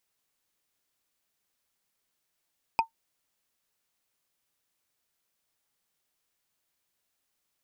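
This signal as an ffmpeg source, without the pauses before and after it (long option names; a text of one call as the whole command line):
ffmpeg -f lavfi -i "aevalsrc='0.178*pow(10,-3*t/0.11)*sin(2*PI*905*t)+0.0891*pow(10,-3*t/0.033)*sin(2*PI*2495.1*t)+0.0447*pow(10,-3*t/0.015)*sin(2*PI*4890.6*t)+0.0224*pow(10,-3*t/0.008)*sin(2*PI*8084.4*t)+0.0112*pow(10,-3*t/0.005)*sin(2*PI*12072.7*t)':duration=0.45:sample_rate=44100" out.wav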